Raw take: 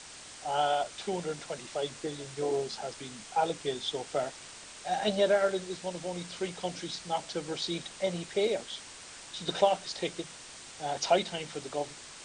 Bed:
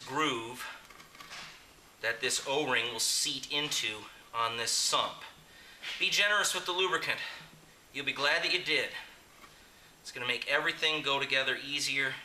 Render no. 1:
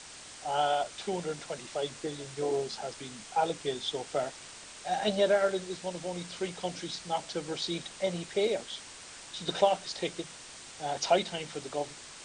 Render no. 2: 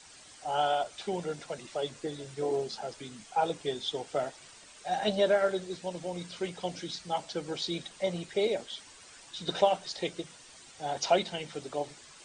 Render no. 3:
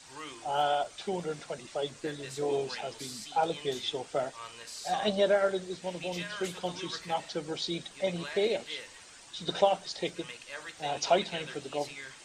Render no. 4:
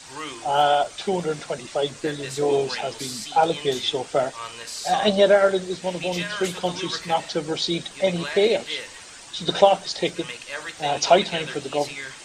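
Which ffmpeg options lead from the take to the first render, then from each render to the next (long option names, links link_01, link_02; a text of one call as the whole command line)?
ffmpeg -i in.wav -af anull out.wav
ffmpeg -i in.wav -af "afftdn=noise_reduction=9:noise_floor=-48" out.wav
ffmpeg -i in.wav -i bed.wav -filter_complex "[1:a]volume=-13.5dB[link_01];[0:a][link_01]amix=inputs=2:normalize=0" out.wav
ffmpeg -i in.wav -af "volume=9.5dB" out.wav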